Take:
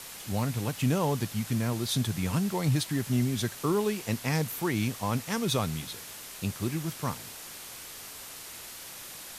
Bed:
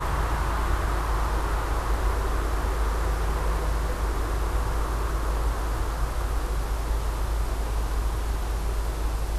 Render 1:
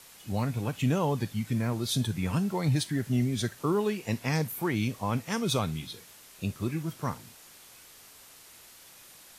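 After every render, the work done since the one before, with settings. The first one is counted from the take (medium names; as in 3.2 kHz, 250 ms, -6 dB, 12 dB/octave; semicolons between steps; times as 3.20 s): noise print and reduce 9 dB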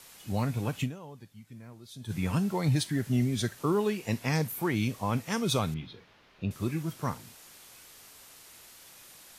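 0.83–2.12 s: dip -18.5 dB, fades 0.39 s exponential; 5.74–6.51 s: distance through air 290 m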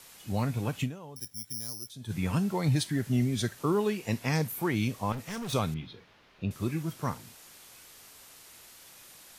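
1.16–1.90 s: careless resampling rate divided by 8×, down filtered, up zero stuff; 5.12–5.53 s: hard clipper -34.5 dBFS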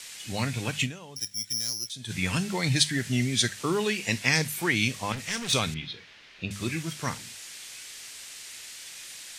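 high-order bell 3.9 kHz +12 dB 2.8 oct; hum notches 50/100/150/200 Hz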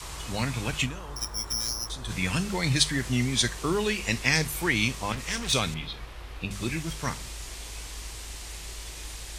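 add bed -14.5 dB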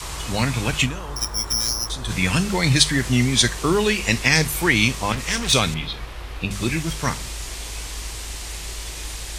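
trim +7.5 dB; peak limiter -2 dBFS, peak gain reduction 3 dB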